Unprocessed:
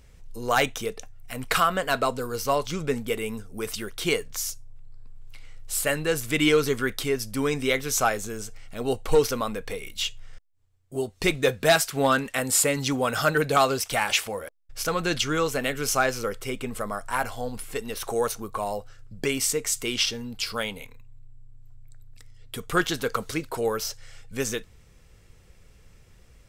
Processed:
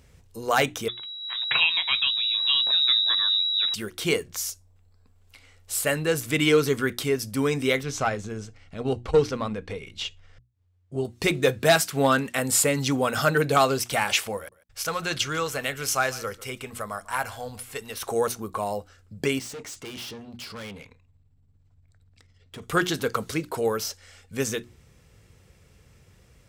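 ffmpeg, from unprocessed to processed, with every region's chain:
ffmpeg -i in.wav -filter_complex "[0:a]asettb=1/sr,asplit=3[link_01][link_02][link_03];[link_01]atrim=end=0.884[link_04];[link_02]atrim=start=0.88:end=3.74,asetpts=PTS-STARTPTS,afade=type=in:duration=0.004:curve=qsin,afade=type=out:start_time=2.856:duration=0.004:curve=qsin,asubboost=boost=8:cutoff=210,lowpass=frequency=3300:width_type=q:width=0.5098,lowpass=frequency=3300:width_type=q:width=0.6013,lowpass=frequency=3300:width_type=q:width=0.9,lowpass=frequency=3300:width_type=q:width=2.563,afreqshift=-3900[link_05];[link_03]atrim=start=3.736[link_06];[link_04][link_05]acrossfade=duration=0.004:curve1=hsin:curve2=qsin[link_07];[link_07][link_06]acrossfade=duration=0.004:curve1=qsin:curve2=hsin,asettb=1/sr,asplit=3[link_08][link_09][link_10];[link_08]atrim=end=7.834[link_11];[link_09]atrim=start=7.83:end=11.05,asetpts=PTS-STARTPTS,afade=type=in:duration=0.004:curve=qsin,afade=type=out:start_time=3.216:duration=0.004:curve=qsin,lowpass=5200,lowshelf=frequency=130:gain=10.5,aeval=exprs='(tanh(2.24*val(0)+0.6)-tanh(0.6))/2.24':channel_layout=same[link_12];[link_10]atrim=start=11.046[link_13];[link_11][link_12]acrossfade=duration=0.004:curve1=hsin:curve2=qsin[link_14];[link_14][link_13]acrossfade=duration=0.004:curve1=qsin:curve2=hsin,asettb=1/sr,asplit=3[link_15][link_16][link_17];[link_15]atrim=end=14.374[link_18];[link_16]atrim=start=14.37:end=18.02,asetpts=PTS-STARTPTS,afade=type=in:duration=0.004:curve=qsin,afade=type=out:start_time=3.646:duration=0.004:curve=qsin,equalizer=frequency=270:width_type=o:width=1.9:gain=-9.5,aecho=1:1:146:0.0944,atrim=end_sample=160965[link_19];[link_17]atrim=start=18.016[link_20];[link_18][link_19]acrossfade=duration=0.004:curve1=hsin:curve2=qsin[link_21];[link_21][link_20]acrossfade=duration=0.004:curve1=qsin:curve2=hsin,asettb=1/sr,asplit=3[link_22][link_23][link_24];[link_22]atrim=end=19.394[link_25];[link_23]atrim=start=19.39:end=22.62,asetpts=PTS-STARTPTS,afade=type=in:duration=0.004:curve=qsin,afade=type=out:start_time=3.226:duration=0.004:curve=qsin,lowpass=5800,aeval=exprs='(tanh(63.1*val(0)+0.4)-tanh(0.4))/63.1':channel_layout=same[link_26];[link_24]atrim=start=22.616[link_27];[link_25][link_26]acrossfade=duration=0.004:curve1=hsin:curve2=qsin[link_28];[link_28][link_27]acrossfade=duration=0.004:curve1=qsin:curve2=hsin,highpass=72,lowshelf=frequency=260:gain=4.5,bandreject=frequency=60:width_type=h:width=6,bandreject=frequency=120:width_type=h:width=6,bandreject=frequency=180:width_type=h:width=6,bandreject=frequency=240:width_type=h:width=6,bandreject=frequency=300:width_type=h:width=6,bandreject=frequency=360:width_type=h:width=6" out.wav

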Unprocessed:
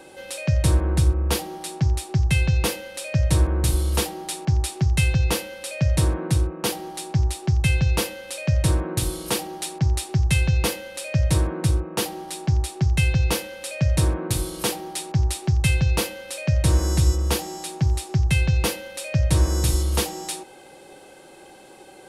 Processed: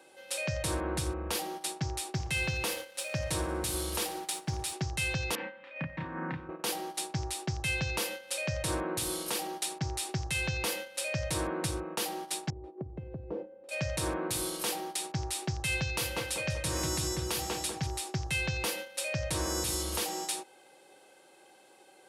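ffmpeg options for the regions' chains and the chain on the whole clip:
ffmpeg -i in.wav -filter_complex "[0:a]asettb=1/sr,asplit=3[link_01][link_02][link_03];[link_01]atrim=end=2.134[link_04];[link_02]atrim=start=2.13:end=4.73,asetpts=PTS-STARTPTS,afade=type=in:duration=0.004:curve=qsin,afade=type=out:start_time=2.596:duration=0.004:curve=qsin,aeval=exprs='sgn(val(0))*max(abs(val(0))-0.00473,0)':channel_layout=same,aecho=1:1:60|120|180|240|300:0.112|0.0662|0.0391|0.023|0.0136,atrim=end_sample=114660[link_05];[link_03]atrim=start=4.726[link_06];[link_04][link_05]acrossfade=duration=0.004:curve1=hsin:curve2=qsin[link_07];[link_07][link_06]acrossfade=duration=0.004:curve1=qsin:curve2=hsin,asettb=1/sr,asplit=3[link_08][link_09][link_10];[link_08]atrim=end=5.354[link_11];[link_09]atrim=start=5.35:end=6.49,asetpts=PTS-STARTPTS,afade=type=in:duration=0.004:curve=qsin,afade=type=out:start_time=1.136:duration=0.004:curve=qsin,acompressor=threshold=-27dB:ratio=4:attack=3.2:release=140:knee=1:detection=peak,highpass=120,equalizer=frequency=160:width_type=q:width=4:gain=8,equalizer=frequency=250:width_type=q:width=4:gain=6,equalizer=frequency=410:width_type=q:width=4:gain=-8,equalizer=frequency=630:width_type=q:width=4:gain=-9,equalizer=frequency=980:width_type=q:width=4:gain=3,equalizer=frequency=1800:width_type=q:width=4:gain=5,lowpass=frequency=2400:width=0.5412,lowpass=frequency=2400:width=1.3066,asplit=2[link_12][link_13];[link_13]adelay=31,volume=-4dB[link_14];[link_12][link_14]amix=inputs=2:normalize=0,atrim=end_sample=50274[link_15];[link_10]atrim=start=6.486[link_16];[link_11][link_15]acrossfade=duration=0.004:curve1=hsin:curve2=qsin[link_17];[link_17][link_16]acrossfade=duration=0.004:curve1=qsin:curve2=hsin,asettb=1/sr,asplit=3[link_18][link_19][link_20];[link_18]atrim=end=12.504[link_21];[link_19]atrim=start=12.5:end=13.69,asetpts=PTS-STARTPTS,afade=type=in:duration=0.004:curve=qsin,afade=type=out:start_time=1.186:duration=0.004:curve=qsin,lowpass=frequency=430:width_type=q:width=1.5,acompressor=threshold=-26dB:ratio=5:attack=3.2:release=140:knee=1:detection=peak[link_22];[link_20]atrim=start=13.686[link_23];[link_21][link_22]acrossfade=duration=0.004:curve1=hsin:curve2=qsin[link_24];[link_24][link_23]acrossfade=duration=0.004:curve1=qsin:curve2=hsin,asettb=1/sr,asplit=3[link_25][link_26][link_27];[link_25]atrim=end=15.824[link_28];[link_26]atrim=start=15.82:end=17.87,asetpts=PTS-STARTPTS,afade=type=in:duration=0.004:curve=qsin,afade=type=out:start_time=2.046:duration=0.004:curve=qsin,equalizer=frequency=580:width_type=o:width=2.6:gain=-3.5,asplit=2[link_29][link_30];[link_30]adelay=193,lowpass=frequency=1900:poles=1,volume=-4dB,asplit=2[link_31][link_32];[link_32]adelay=193,lowpass=frequency=1900:poles=1,volume=0.47,asplit=2[link_33][link_34];[link_34]adelay=193,lowpass=frequency=1900:poles=1,volume=0.47,asplit=2[link_35][link_36];[link_36]adelay=193,lowpass=frequency=1900:poles=1,volume=0.47,asplit=2[link_37][link_38];[link_38]adelay=193,lowpass=frequency=1900:poles=1,volume=0.47,asplit=2[link_39][link_40];[link_40]adelay=193,lowpass=frequency=1900:poles=1,volume=0.47[link_41];[link_29][link_31][link_33][link_35][link_37][link_39][link_41]amix=inputs=7:normalize=0,atrim=end_sample=90405[link_42];[link_27]atrim=start=17.866[link_43];[link_28][link_42]acrossfade=duration=0.004:curve1=hsin:curve2=qsin[link_44];[link_44][link_43]acrossfade=duration=0.004:curve1=qsin:curve2=hsin,agate=range=-10dB:threshold=-34dB:ratio=16:detection=peak,highpass=frequency=490:poles=1,alimiter=limit=-21.5dB:level=0:latency=1:release=88" out.wav

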